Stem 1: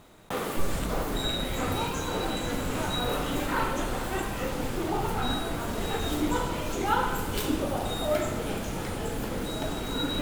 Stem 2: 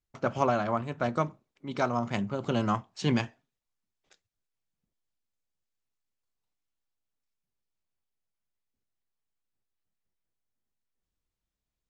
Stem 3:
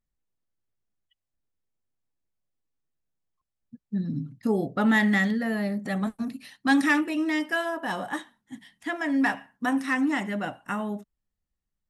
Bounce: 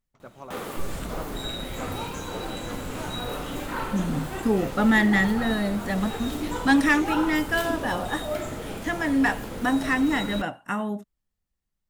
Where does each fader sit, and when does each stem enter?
−3.0, −16.5, +2.0 decibels; 0.20, 0.00, 0.00 seconds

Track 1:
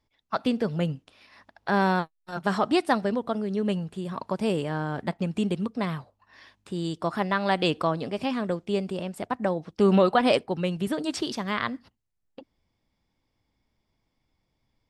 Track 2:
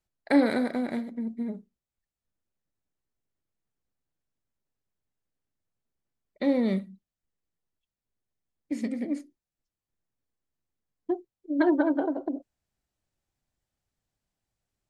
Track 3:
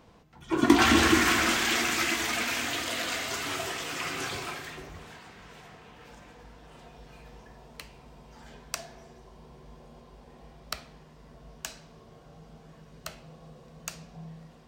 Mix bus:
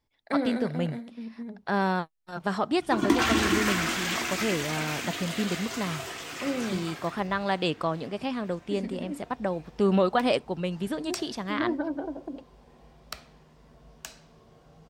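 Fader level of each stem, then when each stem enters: −3.0, −6.5, −3.5 decibels; 0.00, 0.00, 2.40 seconds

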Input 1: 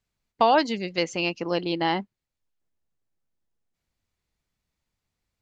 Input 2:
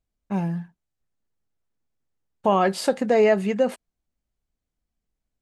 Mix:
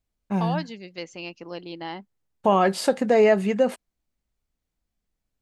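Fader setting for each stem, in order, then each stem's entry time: −10.0, +0.5 decibels; 0.00, 0.00 seconds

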